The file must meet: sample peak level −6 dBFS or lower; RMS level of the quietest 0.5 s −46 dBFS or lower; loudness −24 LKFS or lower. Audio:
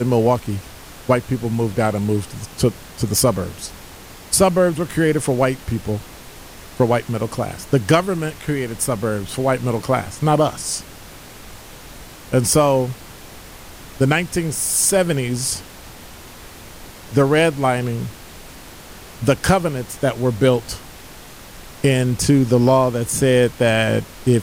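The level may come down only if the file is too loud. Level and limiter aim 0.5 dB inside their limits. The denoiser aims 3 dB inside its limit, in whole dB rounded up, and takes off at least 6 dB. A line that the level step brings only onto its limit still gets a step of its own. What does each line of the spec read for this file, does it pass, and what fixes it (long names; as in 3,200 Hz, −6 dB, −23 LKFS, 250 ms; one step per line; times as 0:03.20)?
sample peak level −3.5 dBFS: out of spec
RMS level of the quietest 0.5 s −39 dBFS: out of spec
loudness −19.0 LKFS: out of spec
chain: broadband denoise 6 dB, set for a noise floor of −39 dBFS
level −5.5 dB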